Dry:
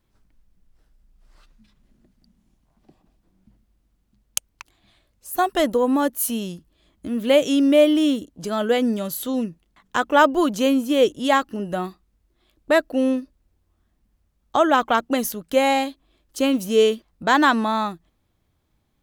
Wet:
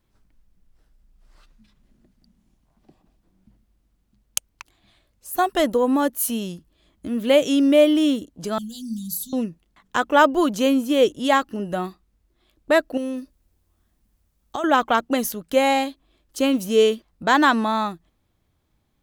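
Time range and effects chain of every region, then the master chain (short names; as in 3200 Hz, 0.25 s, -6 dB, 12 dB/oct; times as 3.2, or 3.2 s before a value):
8.58–9.33 inverse Chebyshev band-stop 330–2400 Hz + notches 60/120/180/240/300/360/420 Hz + comb 4.3 ms, depth 64%
12.97–14.64 high shelf 5500 Hz +9 dB + compressor 4:1, threshold -25 dBFS
whole clip: dry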